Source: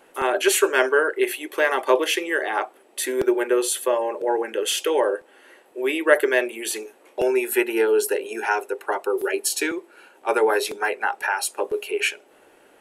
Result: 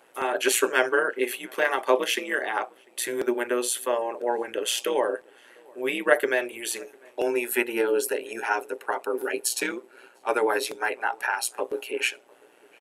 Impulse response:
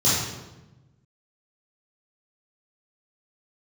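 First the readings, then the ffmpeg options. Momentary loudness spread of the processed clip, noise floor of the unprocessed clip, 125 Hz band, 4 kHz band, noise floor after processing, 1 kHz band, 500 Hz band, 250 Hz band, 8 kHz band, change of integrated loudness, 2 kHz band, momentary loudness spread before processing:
9 LU, −55 dBFS, can't be measured, −3.0 dB, −57 dBFS, −3.0 dB, −5.0 dB, −5.0 dB, −3.0 dB, −4.0 dB, −3.0 dB, 9 LU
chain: -filter_complex "[0:a]highpass=frequency=340:poles=1,tremolo=f=120:d=0.621,asplit=2[link_01][link_02];[link_02]adelay=699.7,volume=-27dB,highshelf=frequency=4000:gain=-15.7[link_03];[link_01][link_03]amix=inputs=2:normalize=0"

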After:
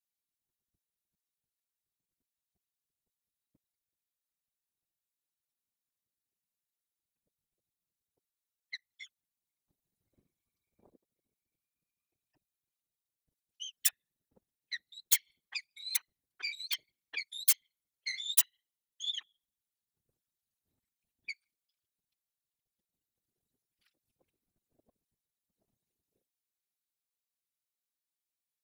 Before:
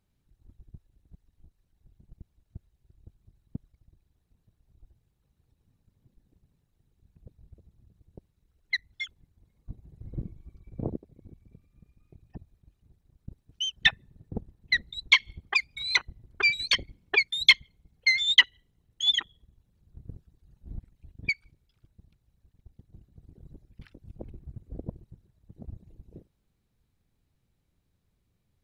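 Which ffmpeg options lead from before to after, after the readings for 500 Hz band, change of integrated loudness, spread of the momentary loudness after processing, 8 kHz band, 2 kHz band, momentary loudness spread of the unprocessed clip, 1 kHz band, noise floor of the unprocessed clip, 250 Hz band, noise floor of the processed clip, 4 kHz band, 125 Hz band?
below −25 dB, −7.5 dB, 19 LU, +8.0 dB, −19.0 dB, 21 LU, −19.0 dB, −75 dBFS, below −30 dB, below −85 dBFS, −14.0 dB, below −40 dB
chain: -af "aeval=exprs='(mod(3.35*val(0)+1,2)-1)/3.35':channel_layout=same,aderivative,afftfilt=real='hypot(re,im)*cos(2*PI*random(0))':imag='hypot(re,im)*sin(2*PI*random(1))':win_size=512:overlap=0.75"

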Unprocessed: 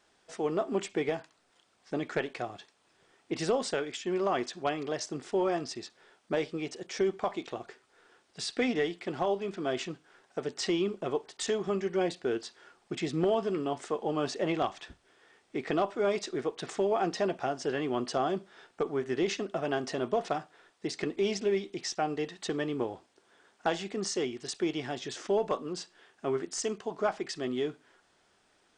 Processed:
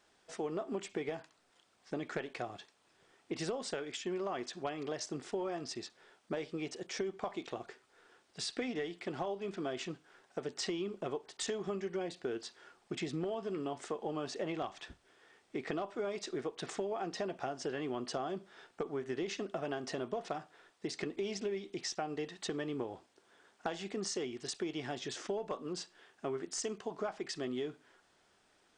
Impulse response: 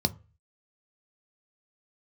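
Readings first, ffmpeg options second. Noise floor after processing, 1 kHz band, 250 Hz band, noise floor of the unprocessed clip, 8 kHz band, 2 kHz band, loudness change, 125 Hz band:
−71 dBFS, −8.0 dB, −6.5 dB, −69 dBFS, −3.5 dB, −6.5 dB, −7.0 dB, −6.0 dB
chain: -af "acompressor=threshold=-32dB:ratio=6,volume=-2dB"

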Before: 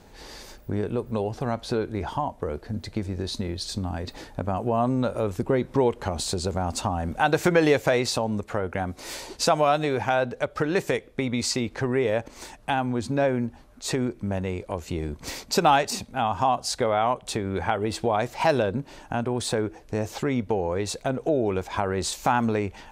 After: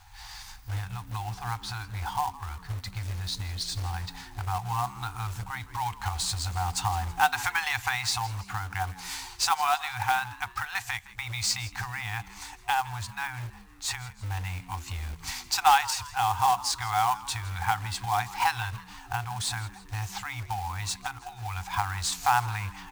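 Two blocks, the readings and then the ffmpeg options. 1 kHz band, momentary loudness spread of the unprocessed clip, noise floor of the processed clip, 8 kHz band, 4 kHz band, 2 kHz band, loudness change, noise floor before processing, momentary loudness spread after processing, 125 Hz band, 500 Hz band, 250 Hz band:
−0.5 dB, 10 LU, −49 dBFS, +1.0 dB, +0.5 dB, +0.5 dB, −4.0 dB, −50 dBFS, 12 LU, −3.0 dB, −22.0 dB, −22.0 dB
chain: -filter_complex "[0:a]afftfilt=real='re*(1-between(b*sr/4096,120,720))':imag='im*(1-between(b*sr/4096,120,720))':win_size=4096:overlap=0.75,acrusher=bits=3:mode=log:mix=0:aa=0.000001,asplit=5[link_01][link_02][link_03][link_04][link_05];[link_02]adelay=163,afreqshift=87,volume=-18.5dB[link_06];[link_03]adelay=326,afreqshift=174,volume=-24.7dB[link_07];[link_04]adelay=489,afreqshift=261,volume=-30.9dB[link_08];[link_05]adelay=652,afreqshift=348,volume=-37.1dB[link_09];[link_01][link_06][link_07][link_08][link_09]amix=inputs=5:normalize=0"

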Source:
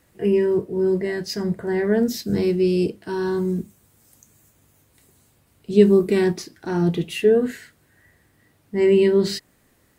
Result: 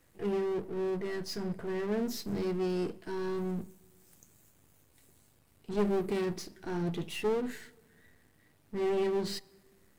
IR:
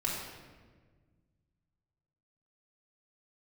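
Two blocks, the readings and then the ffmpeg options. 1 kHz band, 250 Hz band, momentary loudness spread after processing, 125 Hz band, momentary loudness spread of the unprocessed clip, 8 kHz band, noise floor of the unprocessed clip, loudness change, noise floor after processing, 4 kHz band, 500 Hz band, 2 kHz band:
−5.5 dB, −13.5 dB, 10 LU, −13.0 dB, 11 LU, −9.0 dB, −61 dBFS, −13.5 dB, −66 dBFS, −10.0 dB, −13.5 dB, −11.5 dB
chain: -filter_complex "[0:a]aeval=exprs='if(lt(val(0),0),0.251*val(0),val(0))':channel_layout=same,aeval=exprs='(tanh(14.1*val(0)+0.65)-tanh(0.65))/14.1':channel_layout=same,asplit=2[link_01][link_02];[1:a]atrim=start_sample=2205[link_03];[link_02][link_03]afir=irnorm=-1:irlink=0,volume=-26.5dB[link_04];[link_01][link_04]amix=inputs=2:normalize=0"

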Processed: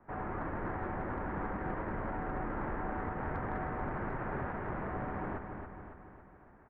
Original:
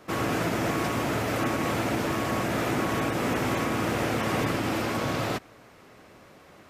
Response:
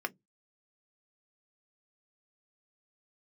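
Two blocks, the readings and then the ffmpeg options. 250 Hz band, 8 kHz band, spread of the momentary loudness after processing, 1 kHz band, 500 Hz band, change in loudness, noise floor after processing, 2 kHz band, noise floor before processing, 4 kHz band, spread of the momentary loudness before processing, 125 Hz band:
−12.0 dB, below −40 dB, 9 LU, −8.0 dB, −11.5 dB, −11.0 dB, −58 dBFS, −12.0 dB, −53 dBFS, below −30 dB, 2 LU, −9.5 dB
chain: -filter_complex "[0:a]acrossover=split=290[link_01][link_02];[link_01]adelay=480[link_03];[link_03][link_02]amix=inputs=2:normalize=0,highpass=frequency=310:width_type=q:width=0.5412,highpass=frequency=310:width_type=q:width=1.307,lowpass=frequency=2100:width_type=q:width=0.5176,lowpass=frequency=2100:width_type=q:width=0.7071,lowpass=frequency=2100:width_type=q:width=1.932,afreqshift=-360,asplit=2[link_04][link_05];[link_05]aecho=0:1:278|556|834|1112|1390|1668|1946:0.473|0.256|0.138|0.0745|0.0402|0.0217|0.0117[link_06];[link_04][link_06]amix=inputs=2:normalize=0,aeval=exprs='0.158*(cos(1*acos(clip(val(0)/0.158,-1,1)))-cos(1*PI/2))+0.00501*(cos(4*acos(clip(val(0)/0.158,-1,1)))-cos(4*PI/2))+0.00224*(cos(5*acos(clip(val(0)/0.158,-1,1)))-cos(5*PI/2))+0.001*(cos(7*acos(clip(val(0)/0.158,-1,1)))-cos(7*PI/2))':channel_layout=same,volume=-8dB"

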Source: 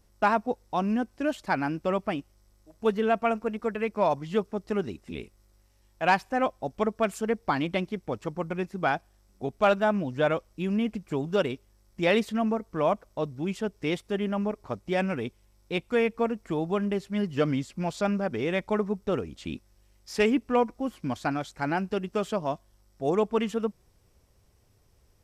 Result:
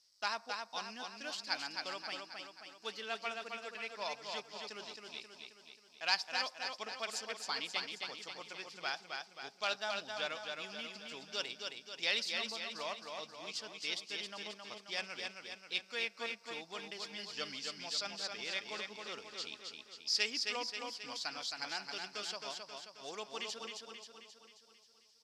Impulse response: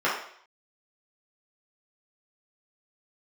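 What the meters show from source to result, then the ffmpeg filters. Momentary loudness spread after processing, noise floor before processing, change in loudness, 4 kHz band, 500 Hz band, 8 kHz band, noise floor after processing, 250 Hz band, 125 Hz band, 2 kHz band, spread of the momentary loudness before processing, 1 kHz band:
12 LU, −64 dBFS, −11.0 dB, +4.0 dB, −19.0 dB, +2.5 dB, −64 dBFS, −26.0 dB, −29.5 dB, −6.5 dB, 9 LU, −14.0 dB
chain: -filter_complex "[0:a]bandpass=frequency=4800:width_type=q:width=4.6:csg=0,aecho=1:1:267|534|801|1068|1335|1602|1869:0.596|0.322|0.174|0.0938|0.0506|0.0274|0.0148,asplit=2[link_01][link_02];[1:a]atrim=start_sample=2205,asetrate=32634,aresample=44100[link_03];[link_02][link_03]afir=irnorm=-1:irlink=0,volume=-37dB[link_04];[link_01][link_04]amix=inputs=2:normalize=0,volume=11.5dB"

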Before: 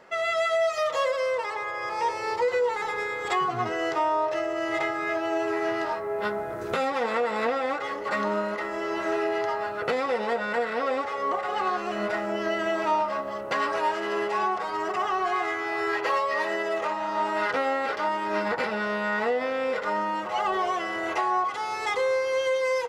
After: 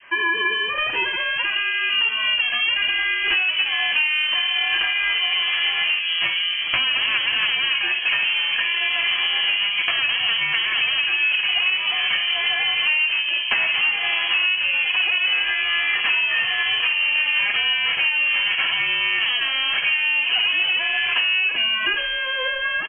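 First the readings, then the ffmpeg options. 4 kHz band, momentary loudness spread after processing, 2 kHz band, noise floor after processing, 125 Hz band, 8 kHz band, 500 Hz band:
+22.5 dB, 3 LU, +12.5 dB, −25 dBFS, can't be measured, below −25 dB, −14.5 dB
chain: -filter_complex "[0:a]acrossover=split=1500[link_01][link_02];[link_01]dynaudnorm=framelen=480:gausssize=7:maxgain=13dB[link_03];[link_02]crystalizer=i=10:c=0[link_04];[link_03][link_04]amix=inputs=2:normalize=0,aeval=exprs='clip(val(0),-1,0.168)':channel_layout=same,highpass=frequency=730:width=0.5412,highpass=frequency=730:width=1.3066,aecho=1:1:51|66:0.266|0.178,adynamicequalizer=threshold=0.0158:dfrequency=2800:dqfactor=1.3:tfrequency=2800:tqfactor=1.3:attack=5:release=100:ratio=0.375:range=2:mode=cutabove:tftype=bell,lowpass=frequency=3100:width_type=q:width=0.5098,lowpass=frequency=3100:width_type=q:width=0.6013,lowpass=frequency=3100:width_type=q:width=0.9,lowpass=frequency=3100:width_type=q:width=2.563,afreqshift=-3700,acompressor=threshold=-22dB:ratio=6,volume=4.5dB"

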